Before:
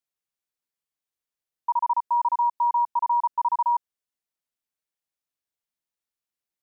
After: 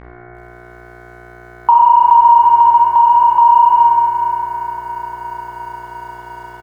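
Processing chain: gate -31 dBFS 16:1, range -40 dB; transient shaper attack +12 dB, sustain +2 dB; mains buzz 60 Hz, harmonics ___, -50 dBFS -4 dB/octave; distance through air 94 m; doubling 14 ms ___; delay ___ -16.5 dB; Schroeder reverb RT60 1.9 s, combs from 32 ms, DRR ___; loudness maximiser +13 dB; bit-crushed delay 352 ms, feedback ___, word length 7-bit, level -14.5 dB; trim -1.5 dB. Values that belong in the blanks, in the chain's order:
37, -6 dB, 212 ms, -1 dB, 80%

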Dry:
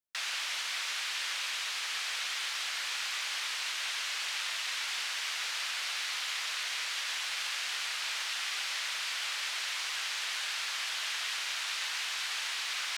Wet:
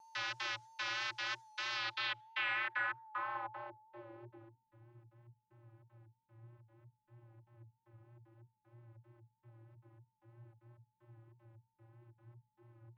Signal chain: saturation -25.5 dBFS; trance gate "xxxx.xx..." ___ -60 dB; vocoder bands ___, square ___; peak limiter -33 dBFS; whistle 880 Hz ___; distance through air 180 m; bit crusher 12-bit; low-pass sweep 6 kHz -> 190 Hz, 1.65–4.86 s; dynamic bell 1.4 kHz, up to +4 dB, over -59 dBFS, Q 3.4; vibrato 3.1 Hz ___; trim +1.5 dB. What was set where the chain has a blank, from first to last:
191 bpm, 32, 116 Hz, -59 dBFS, 43 cents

